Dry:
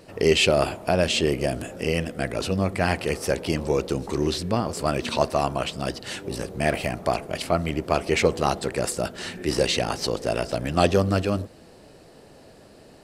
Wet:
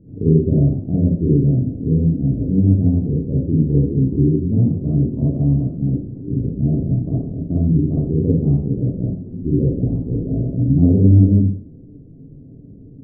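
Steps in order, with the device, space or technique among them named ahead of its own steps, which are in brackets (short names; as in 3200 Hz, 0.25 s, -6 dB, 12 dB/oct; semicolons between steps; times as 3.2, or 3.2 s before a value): next room (LPF 270 Hz 24 dB/oct; reverb RT60 0.45 s, pre-delay 44 ms, DRR -6 dB); gain +7.5 dB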